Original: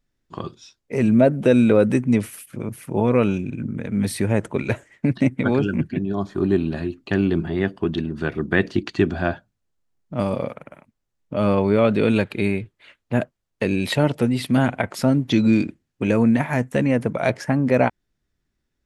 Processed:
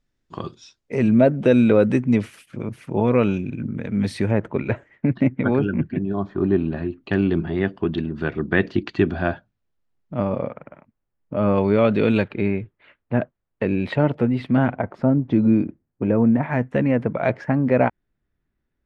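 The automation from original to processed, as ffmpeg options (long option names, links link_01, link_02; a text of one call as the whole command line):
ffmpeg -i in.wav -af "asetnsamples=nb_out_samples=441:pad=0,asendcmd='0.95 lowpass f 4900;4.31 lowpass f 2200;7.04 lowpass f 3700;10.19 lowpass f 1900;11.55 lowpass f 4200;12.28 lowpass f 2000;14.76 lowpass f 1100;16.43 lowpass f 2300',lowpass=8000" out.wav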